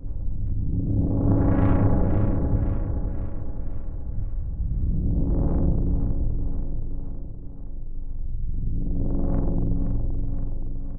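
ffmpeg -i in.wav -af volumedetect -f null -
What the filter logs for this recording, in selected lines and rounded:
mean_volume: -22.5 dB
max_volume: -7.6 dB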